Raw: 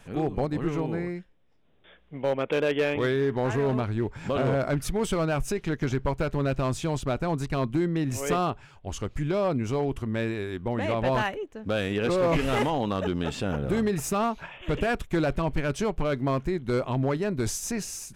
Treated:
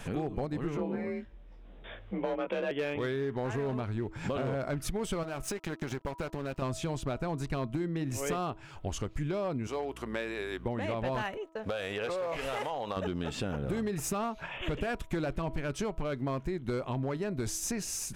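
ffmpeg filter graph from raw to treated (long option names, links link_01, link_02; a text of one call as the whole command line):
ffmpeg -i in.wav -filter_complex "[0:a]asettb=1/sr,asplit=3[link_01][link_02][link_03];[link_01]atrim=end=0.774[link_04];[link_02]atrim=start=0.77:end=2.71,asetpts=PTS-STARTPTS,afade=type=in:duration=0.004:curve=qsin,afade=type=out:start_time=1.936:duration=0.004:curve=qsin,lowpass=frequency=2800:poles=1,asplit=2[link_05][link_06];[link_06]adelay=19,volume=-3.5dB[link_07];[link_05][link_07]amix=inputs=2:normalize=0,atrim=end_sample=85554,afreqshift=40[link_08];[link_03]atrim=start=2.706[link_09];[link_04][link_08]acrossfade=duration=0.004:curve1=hsin:curve2=qsin[link_10];[link_10][link_09]acrossfade=duration=0.004:curve1=qsin:curve2=hsin,asettb=1/sr,asplit=3[link_11][link_12][link_13];[link_11]atrim=end=5.234[link_14];[link_12]atrim=start=5.23:end=6.62,asetpts=PTS-STARTPTS,afade=type=in:duration=0.004:curve=qsin,afade=type=out:start_time=1.386:duration=0.004:curve=qsin,lowshelf=frequency=160:gain=-8.5,acompressor=threshold=-30dB:ratio=3:attack=3.2:release=140:knee=1:detection=peak,aeval=exprs='sgn(val(0))*max(abs(val(0))-0.00596,0)':channel_layout=same[link_15];[link_13]atrim=start=6.616[link_16];[link_14][link_15]acrossfade=duration=0.004:curve1=hsin:curve2=qsin[link_17];[link_17][link_16]acrossfade=duration=0.004:curve1=qsin:curve2=hsin,asettb=1/sr,asplit=3[link_18][link_19][link_20];[link_18]atrim=end=9.674[link_21];[link_19]atrim=start=9.67:end=10.66,asetpts=PTS-STARTPTS,afade=type=in:duration=0.004:curve=qsin,afade=type=out:start_time=0.986:duration=0.004:curve=qsin,highpass=440,aeval=exprs='val(0)+0.00316*(sin(2*PI*60*n/s)+sin(2*PI*2*60*n/s)/2+sin(2*PI*3*60*n/s)/3+sin(2*PI*4*60*n/s)/4+sin(2*PI*5*60*n/s)/5)':channel_layout=same[link_22];[link_20]atrim=start=10.656[link_23];[link_21][link_22]acrossfade=duration=0.004:curve1=hsin:curve2=qsin[link_24];[link_24][link_23]acrossfade=duration=0.004:curve1=qsin:curve2=hsin,asettb=1/sr,asplit=3[link_25][link_26][link_27];[link_25]atrim=end=11.374[link_28];[link_26]atrim=start=11.37:end=12.97,asetpts=PTS-STARTPTS,afade=type=in:duration=0.004:curve=qsin,afade=type=out:start_time=1.596:duration=0.004:curve=qsin,lowshelf=frequency=400:width_type=q:width=1.5:gain=-9.5,acompressor=threshold=-33dB:ratio=2:attack=3.2:release=140:knee=1:detection=peak,agate=range=-25dB:threshold=-53dB:ratio=16:release=100:detection=peak[link_29];[link_27]atrim=start=12.966[link_30];[link_28][link_29]acrossfade=duration=0.004:curve1=hsin:curve2=qsin[link_31];[link_31][link_30]acrossfade=duration=0.004:curve1=qsin:curve2=hsin,bandreject=frequency=323.8:width_type=h:width=4,bandreject=frequency=647.6:width_type=h:width=4,bandreject=frequency=971.4:width_type=h:width=4,bandreject=frequency=1295.2:width_type=h:width=4,acompressor=threshold=-42dB:ratio=4,volume=8.5dB" out.wav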